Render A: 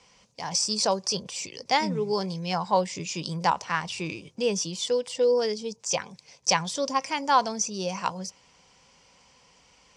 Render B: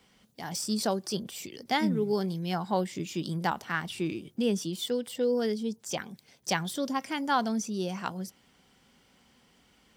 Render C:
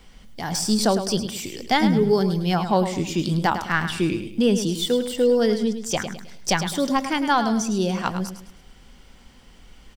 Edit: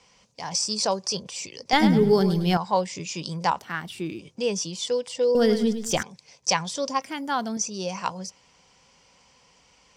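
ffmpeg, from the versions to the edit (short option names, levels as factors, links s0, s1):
-filter_complex "[2:a]asplit=2[s0][s1];[1:a]asplit=2[s2][s3];[0:a]asplit=5[s4][s5][s6][s7][s8];[s4]atrim=end=1.732[s9];[s0]atrim=start=1.728:end=2.572[s10];[s5]atrim=start=2.568:end=3.592[s11];[s2]atrim=start=3.588:end=4.192[s12];[s6]atrim=start=4.188:end=5.352[s13];[s1]atrim=start=5.348:end=6.032[s14];[s7]atrim=start=6.028:end=7.022[s15];[s3]atrim=start=7.018:end=7.572[s16];[s8]atrim=start=7.568[s17];[s9][s10]acrossfade=d=0.004:c1=hsin:c2=hsin[s18];[s18][s11]acrossfade=d=0.004:c1=hsin:c2=hsin[s19];[s19][s12]acrossfade=d=0.004:c1=hsin:c2=hsin[s20];[s20][s13]acrossfade=d=0.004:c1=hsin:c2=hsin[s21];[s21][s14]acrossfade=d=0.004:c1=hsin:c2=hsin[s22];[s22][s15]acrossfade=d=0.004:c1=hsin:c2=hsin[s23];[s23][s16]acrossfade=d=0.004:c1=hsin:c2=hsin[s24];[s24][s17]acrossfade=d=0.004:c1=hsin:c2=hsin"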